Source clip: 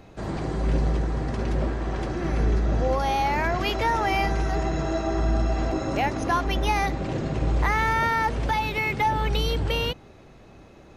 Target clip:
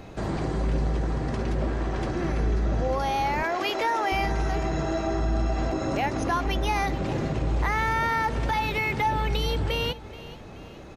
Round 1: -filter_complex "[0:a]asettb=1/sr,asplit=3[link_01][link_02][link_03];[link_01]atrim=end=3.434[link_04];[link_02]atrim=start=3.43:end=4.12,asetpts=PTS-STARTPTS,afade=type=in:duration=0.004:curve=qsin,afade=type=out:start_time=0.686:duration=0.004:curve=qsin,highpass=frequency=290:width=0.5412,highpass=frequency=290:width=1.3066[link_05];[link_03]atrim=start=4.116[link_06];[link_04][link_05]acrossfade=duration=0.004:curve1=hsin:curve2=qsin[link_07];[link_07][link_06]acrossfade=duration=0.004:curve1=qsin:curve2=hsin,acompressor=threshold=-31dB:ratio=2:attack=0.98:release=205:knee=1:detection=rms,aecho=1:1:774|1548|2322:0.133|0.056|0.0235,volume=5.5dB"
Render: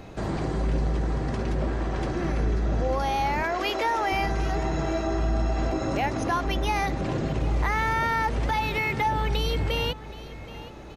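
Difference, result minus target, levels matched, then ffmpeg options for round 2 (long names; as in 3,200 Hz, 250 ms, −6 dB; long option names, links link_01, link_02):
echo 347 ms late
-filter_complex "[0:a]asettb=1/sr,asplit=3[link_01][link_02][link_03];[link_01]atrim=end=3.434[link_04];[link_02]atrim=start=3.43:end=4.12,asetpts=PTS-STARTPTS,afade=type=in:duration=0.004:curve=qsin,afade=type=out:start_time=0.686:duration=0.004:curve=qsin,highpass=frequency=290:width=0.5412,highpass=frequency=290:width=1.3066[link_05];[link_03]atrim=start=4.116[link_06];[link_04][link_05]acrossfade=duration=0.004:curve1=hsin:curve2=qsin[link_07];[link_07][link_06]acrossfade=duration=0.004:curve1=qsin:curve2=hsin,acompressor=threshold=-31dB:ratio=2:attack=0.98:release=205:knee=1:detection=rms,aecho=1:1:427|854|1281:0.133|0.056|0.0235,volume=5.5dB"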